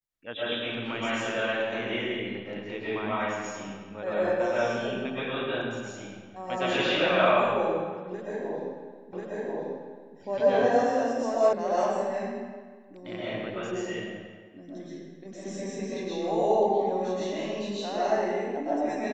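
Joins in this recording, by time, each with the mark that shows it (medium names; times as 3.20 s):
9.13 s: repeat of the last 1.04 s
11.53 s: sound stops dead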